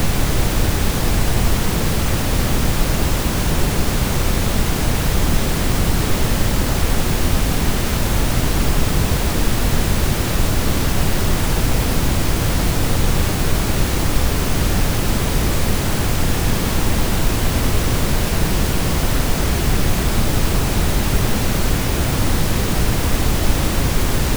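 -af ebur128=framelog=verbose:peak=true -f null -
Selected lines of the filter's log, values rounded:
Integrated loudness:
  I:         -19.1 LUFS
  Threshold: -29.1 LUFS
Loudness range:
  LRA:         0.2 LU
  Threshold: -39.1 LUFS
  LRA low:   -19.3 LUFS
  LRA high:  -19.0 LUFS
True peak:
  Peak:       -1.7 dBFS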